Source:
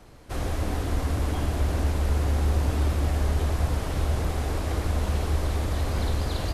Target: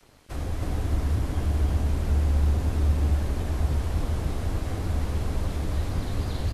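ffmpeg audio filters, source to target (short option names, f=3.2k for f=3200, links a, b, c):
-filter_complex "[0:a]acrossover=split=280[a][b];[b]acompressor=threshold=-43dB:ratio=2[c];[a][c]amix=inputs=2:normalize=0,flanger=delay=6.5:depth=8.8:regen=-43:speed=1.5:shape=triangular,acrossover=split=1900[d][e];[d]aeval=exprs='sgn(val(0))*max(abs(val(0))-0.00178,0)':c=same[f];[f][e]amix=inputs=2:normalize=0,aecho=1:1:319:0.708,volume=3.5dB"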